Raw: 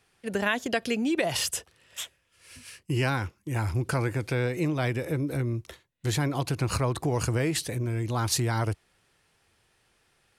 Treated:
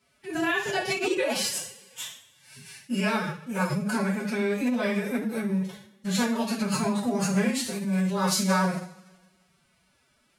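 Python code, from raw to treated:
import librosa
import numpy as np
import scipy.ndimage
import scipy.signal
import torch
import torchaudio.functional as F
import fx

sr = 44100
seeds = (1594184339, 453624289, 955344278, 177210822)

y = fx.rev_double_slope(x, sr, seeds[0], early_s=0.48, late_s=1.5, knee_db=-18, drr_db=-5.5)
y = fx.pitch_keep_formants(y, sr, semitones=8.5)
y = F.gain(torch.from_numpy(y), -5.5).numpy()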